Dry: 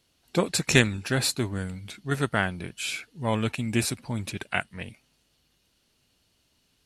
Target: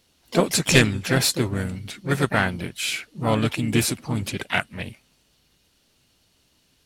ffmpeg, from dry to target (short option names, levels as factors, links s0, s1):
-filter_complex "[0:a]acontrast=60,asplit=4[s0][s1][s2][s3];[s1]asetrate=37084,aresample=44100,atempo=1.18921,volume=0.158[s4];[s2]asetrate=55563,aresample=44100,atempo=0.793701,volume=0.355[s5];[s3]asetrate=58866,aresample=44100,atempo=0.749154,volume=0.282[s6];[s0][s4][s5][s6]amix=inputs=4:normalize=0,volume=0.794"